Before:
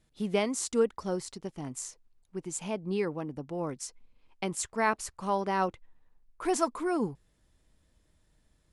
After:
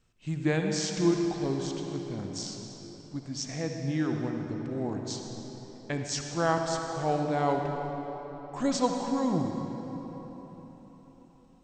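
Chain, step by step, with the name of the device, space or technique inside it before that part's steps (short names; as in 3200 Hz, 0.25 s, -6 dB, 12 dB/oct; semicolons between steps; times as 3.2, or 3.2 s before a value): slowed and reverbed (varispeed -25%; reverb RT60 4.4 s, pre-delay 55 ms, DRR 2.5 dB)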